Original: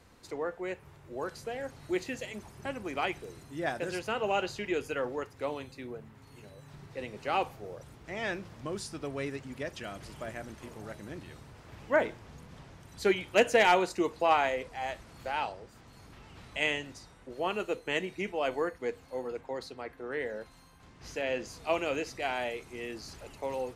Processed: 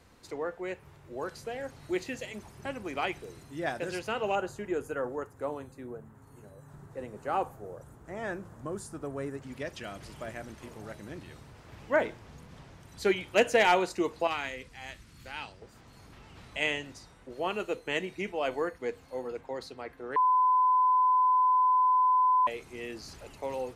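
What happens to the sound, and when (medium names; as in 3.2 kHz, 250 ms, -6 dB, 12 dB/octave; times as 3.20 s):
4.35–9.42 s: high-order bell 3.4 kHz -12.5 dB
14.27–15.62 s: peaking EQ 670 Hz -14.5 dB 1.6 oct
20.16–22.47 s: bleep 1.01 kHz -20.5 dBFS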